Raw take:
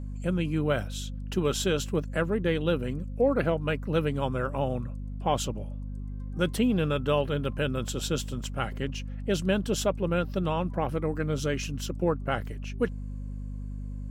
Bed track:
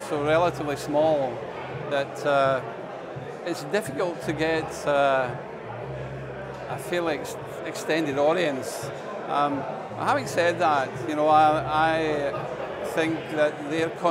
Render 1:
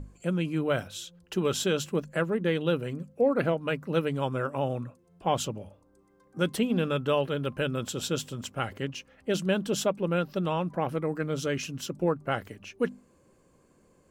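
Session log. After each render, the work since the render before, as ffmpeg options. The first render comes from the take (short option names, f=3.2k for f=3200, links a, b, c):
-af "bandreject=f=50:t=h:w=6,bandreject=f=100:t=h:w=6,bandreject=f=150:t=h:w=6,bandreject=f=200:t=h:w=6,bandreject=f=250:t=h:w=6"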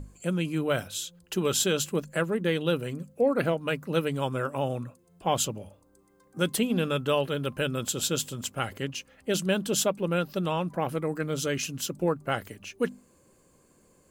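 -af "highshelf=f=4.9k:g=11,bandreject=f=5.6k:w=17"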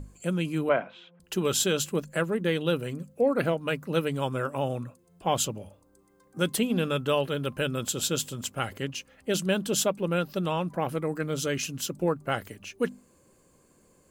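-filter_complex "[0:a]asettb=1/sr,asplit=3[a][b][c];[a]atrim=end=0.694[d];[b]atrim=start=0.69:end=1.2,asetpts=PTS-STARTPTS,afade=t=in:d=0.004:c=qsin,afade=t=out:st=0.506:d=0.004:c=qsin,highpass=f=180:w=0.5412,highpass=f=180:w=1.3066,equalizer=f=670:t=q:w=4:g=8,equalizer=f=1k:t=q:w=4:g=8,equalizer=f=2.2k:t=q:w=4:g=5,lowpass=f=2.4k:w=0.5412,lowpass=f=2.4k:w=1.3066[e];[c]atrim=start=1.196[f];[d][e]acrossfade=d=0.004:c1=hsin:c2=qsin[g];[g][f]acrossfade=d=0.004:c1=qsin:c2=hsin"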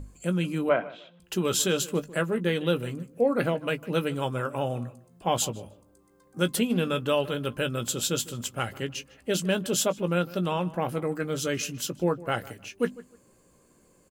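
-filter_complex "[0:a]asplit=2[a][b];[b]adelay=17,volume=-10.5dB[c];[a][c]amix=inputs=2:normalize=0,asplit=2[d][e];[e]adelay=153,lowpass=f=2.8k:p=1,volume=-18.5dB,asplit=2[f][g];[g]adelay=153,lowpass=f=2.8k:p=1,volume=0.24[h];[d][f][h]amix=inputs=3:normalize=0"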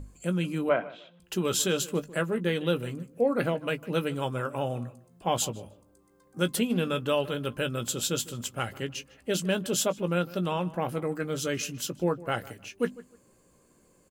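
-af "volume=-1.5dB"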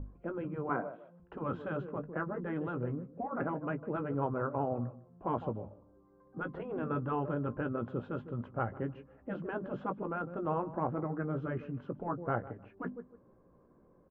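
-af "lowpass=f=1.3k:w=0.5412,lowpass=f=1.3k:w=1.3066,afftfilt=real='re*lt(hypot(re,im),0.224)':imag='im*lt(hypot(re,im),0.224)':win_size=1024:overlap=0.75"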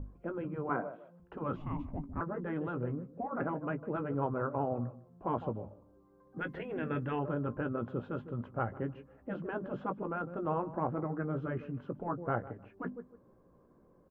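-filter_complex "[0:a]asettb=1/sr,asplit=3[a][b][c];[a]atrim=end=1.564[d];[b]atrim=start=1.56:end=2.21,asetpts=PTS-STARTPTS,afade=t=in:d=0.004:c=qsin,afade=t=out:st=0.646:d=0.004:c=qsin,afreqshift=-430[e];[c]atrim=start=2.206[f];[d][e]acrossfade=d=0.004:c1=hsin:c2=qsin[g];[g][f]acrossfade=d=0.004:c1=qsin:c2=hsin,asettb=1/sr,asplit=3[h][i][j];[h]atrim=end=6.384[k];[i]atrim=start=6.38:end=7.19,asetpts=PTS-STARTPTS,afade=t=in:d=0.004:c=qsin,afade=t=out:st=0.806:d=0.004:c=qsin,highshelf=f=1.5k:t=q:w=3:g=6.5[l];[j]atrim=start=7.186[m];[k][l]acrossfade=d=0.004:c1=hsin:c2=qsin[n];[n][m]acrossfade=d=0.004:c1=qsin:c2=hsin"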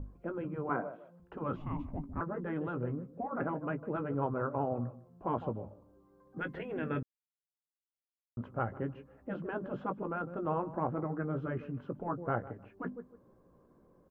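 -filter_complex "[0:a]asplit=3[a][b][c];[a]atrim=end=7.03,asetpts=PTS-STARTPTS,afade=t=out:st=7.026:d=0.004:c=hsin[d];[b]atrim=start=7.03:end=8.37,asetpts=PTS-STARTPTS,volume=0[e];[c]atrim=start=8.37,asetpts=PTS-STARTPTS,afade=t=in:d=0.004:c=hsin[f];[d][e][f]concat=n=3:v=0:a=1"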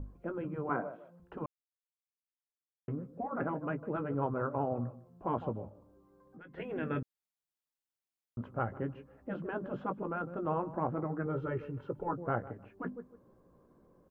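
-filter_complex "[0:a]asplit=3[a][b][c];[a]afade=t=out:st=5.69:d=0.02[d];[b]acompressor=threshold=-50dB:ratio=6:attack=3.2:release=140:knee=1:detection=peak,afade=t=in:st=5.69:d=0.02,afade=t=out:st=6.57:d=0.02[e];[c]afade=t=in:st=6.57:d=0.02[f];[d][e][f]amix=inputs=3:normalize=0,asettb=1/sr,asplit=3[g][h][i];[g]atrim=end=11.264[j];[h]atrim=start=11.26:end=12.13,asetpts=PTS-STARTPTS,afade=t=in:d=0.004:c=qsin,afade=t=out:st=0.866:d=0.004:c=qsin,aecho=1:1:2.2:0.65,atrim=end_sample=38367[k];[i]atrim=start=12.126[l];[j][k]acrossfade=d=0.004:c1=hsin:c2=qsin[m];[m][l]acrossfade=d=0.004:c1=qsin:c2=hsin,asplit=3[n][o][p];[n]atrim=end=1.46,asetpts=PTS-STARTPTS,afade=t=out:st=1.456:d=0.004:c=hsin[q];[o]atrim=start=1.46:end=2.88,asetpts=PTS-STARTPTS,volume=0[r];[p]atrim=start=2.88,asetpts=PTS-STARTPTS,afade=t=in:d=0.004:c=hsin[s];[q][r][s]concat=n=3:v=0:a=1"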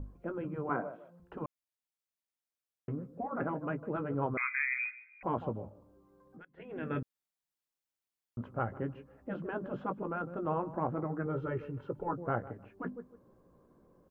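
-filter_complex "[0:a]asettb=1/sr,asplit=3[a][b][c];[a]atrim=end=4.374[d];[b]atrim=start=4.37:end=5.23,asetpts=PTS-STARTPTS,afade=t=in:d=0.004:c=qsin,afade=t=out:st=0.856:d=0.004:c=qsin,lowpass=f=2.2k:t=q:w=0.5098,lowpass=f=2.2k:t=q:w=0.6013,lowpass=f=2.2k:t=q:w=0.9,lowpass=f=2.2k:t=q:w=2.563,afreqshift=-2600[e];[c]atrim=start=5.226[f];[d][e]acrossfade=d=0.004:c1=hsin:c2=qsin[g];[g][f]acrossfade=d=0.004:c1=qsin:c2=hsin,asplit=2[h][i];[h]atrim=end=6.45,asetpts=PTS-STARTPTS,afade=t=out:st=6.446:d=0.004:c=hsin:silence=0.0668344[j];[i]atrim=start=6.45,asetpts=PTS-STARTPTS,afade=t=in:d=0.52:silence=0.0668344[k];[j][k]concat=n=2:v=0:a=1"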